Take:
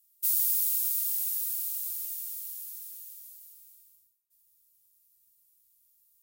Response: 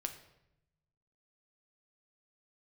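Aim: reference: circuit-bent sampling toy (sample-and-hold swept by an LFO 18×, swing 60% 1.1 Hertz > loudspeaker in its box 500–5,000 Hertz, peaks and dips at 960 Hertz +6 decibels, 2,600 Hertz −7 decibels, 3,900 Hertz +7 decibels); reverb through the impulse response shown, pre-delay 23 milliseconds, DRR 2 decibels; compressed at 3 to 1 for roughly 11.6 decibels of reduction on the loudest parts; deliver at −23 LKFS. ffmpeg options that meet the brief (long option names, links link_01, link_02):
-filter_complex "[0:a]acompressor=threshold=-39dB:ratio=3,asplit=2[link_01][link_02];[1:a]atrim=start_sample=2205,adelay=23[link_03];[link_02][link_03]afir=irnorm=-1:irlink=0,volume=-1.5dB[link_04];[link_01][link_04]amix=inputs=2:normalize=0,acrusher=samples=18:mix=1:aa=0.000001:lfo=1:lforange=10.8:lforate=1.1,highpass=500,equalizer=frequency=960:width_type=q:width=4:gain=6,equalizer=frequency=2600:width_type=q:width=4:gain=-7,equalizer=frequency=3900:width_type=q:width=4:gain=7,lowpass=frequency=5000:width=0.5412,lowpass=frequency=5000:width=1.3066,volume=16dB"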